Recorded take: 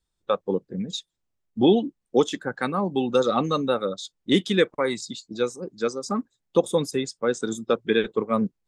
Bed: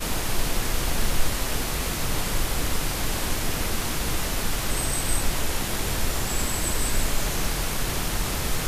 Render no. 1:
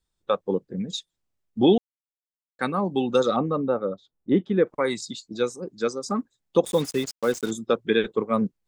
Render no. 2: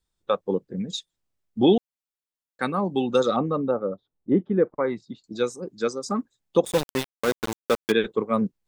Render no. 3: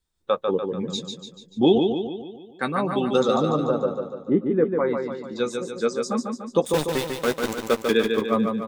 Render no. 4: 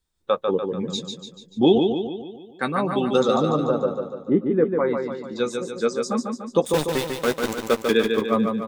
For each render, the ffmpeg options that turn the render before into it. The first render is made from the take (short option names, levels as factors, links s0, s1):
-filter_complex "[0:a]asettb=1/sr,asplit=3[s0][s1][s2];[s0]atrim=end=3.364[s3];[s1]atrim=start=3.36:end=4.67,asetpts=PTS-STARTPTS,afade=t=in:d=0.004:c=qsin,afade=t=out:st=1.306:d=0.004:c=qsin,lowpass=1100[s4];[s2]atrim=start=4.666[s5];[s3][s4]acrossfade=d=0.004:c1=hsin:c2=qsin[s6];[s6][s5]acrossfade=d=0.004:c1=qsin:c2=hsin,asettb=1/sr,asplit=3[s7][s8][s9];[s7]atrim=end=6.654[s10];[s8]atrim=start=6.65:end=7.51,asetpts=PTS-STARTPTS,afade=t=in:d=0.004:c=qsin,afade=t=out:st=0.856:d=0.004:c=qsin,acrusher=bits=5:mix=0:aa=0.5[s11];[s9]atrim=start=7.506[s12];[s10][s11]acrossfade=d=0.004:c1=hsin:c2=qsin[s13];[s13][s12]acrossfade=d=0.004:c1=qsin:c2=hsin,asplit=3[s14][s15][s16];[s14]atrim=end=1.78,asetpts=PTS-STARTPTS,afade=t=out:st=1.776:d=0.004:c=hsin[s17];[s15]atrim=start=1.78:end=2.59,asetpts=PTS-STARTPTS,volume=0[s18];[s16]atrim=start=2.59,asetpts=PTS-STARTPTS,afade=t=in:d=0.004:c=hsin[s19];[s17][s18][s19]concat=n=3:v=0:a=1"
-filter_complex "[0:a]asettb=1/sr,asplit=3[s0][s1][s2];[s0]atrim=end=3.714[s3];[s1]atrim=start=3.71:end=5.24,asetpts=PTS-STARTPTS,afade=t=in:d=0.004:c=qsin,afade=t=out:st=1.526:d=0.004:c=qsin,lowpass=1400[s4];[s2]atrim=start=5.236[s5];[s3][s4]acrossfade=d=0.004:c1=hsin:c2=qsin[s6];[s6][s5]acrossfade=d=0.004:c1=qsin:c2=hsin,asettb=1/sr,asplit=3[s7][s8][s9];[s7]atrim=end=6.734[s10];[s8]atrim=start=6.73:end=7.92,asetpts=PTS-STARTPTS,afade=t=in:d=0.004:c=qsin,afade=t=out:st=1.186:d=0.004:c=qsin,aeval=exprs='val(0)*gte(abs(val(0)),0.0708)':c=same[s11];[s9]atrim=start=7.916[s12];[s10][s11]acrossfade=d=0.004:c1=hsin:c2=qsin[s13];[s13][s12]acrossfade=d=0.004:c1=qsin:c2=hsin"
-filter_complex "[0:a]asplit=2[s0][s1];[s1]adelay=13,volume=0.335[s2];[s0][s2]amix=inputs=2:normalize=0,asplit=2[s3][s4];[s4]aecho=0:1:146|292|438|584|730|876|1022:0.562|0.292|0.152|0.0791|0.0411|0.0214|0.0111[s5];[s3][s5]amix=inputs=2:normalize=0"
-af "volume=1.12"